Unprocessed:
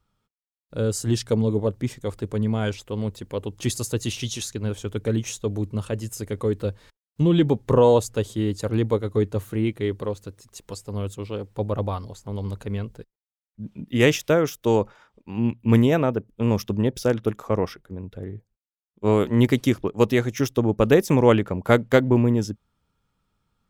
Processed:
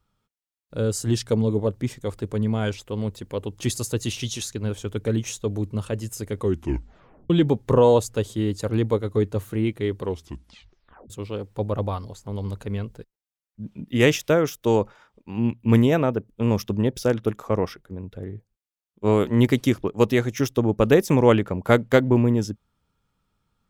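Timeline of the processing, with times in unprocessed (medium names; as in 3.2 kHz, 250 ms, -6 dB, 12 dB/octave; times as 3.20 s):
6.41 s: tape stop 0.89 s
10.00 s: tape stop 1.10 s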